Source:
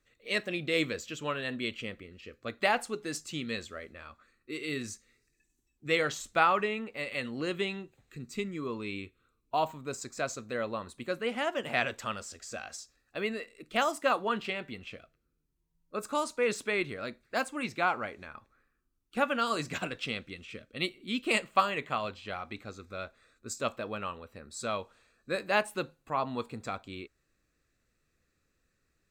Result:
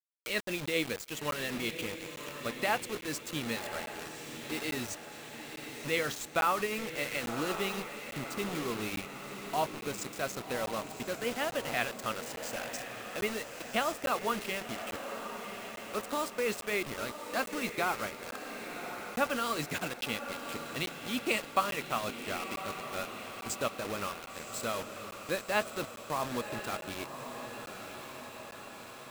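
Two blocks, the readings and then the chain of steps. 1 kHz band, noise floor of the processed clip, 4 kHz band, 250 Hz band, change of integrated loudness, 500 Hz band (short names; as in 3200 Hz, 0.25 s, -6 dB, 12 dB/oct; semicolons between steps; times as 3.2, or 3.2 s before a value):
-2.0 dB, -47 dBFS, 0.0 dB, -1.0 dB, -2.0 dB, -1.5 dB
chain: in parallel at 0 dB: compressor, threshold -36 dBFS, peak gain reduction 16.5 dB; on the sum: tremolo 7.7 Hz, depth 37%; requantised 6-bit, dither none; on a send: diffused feedback echo 1.083 s, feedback 58%, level -8.5 dB; on the sum: crackling interface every 0.85 s, samples 512, zero, from 0.46; mismatched tape noise reduction encoder only; gain -3.5 dB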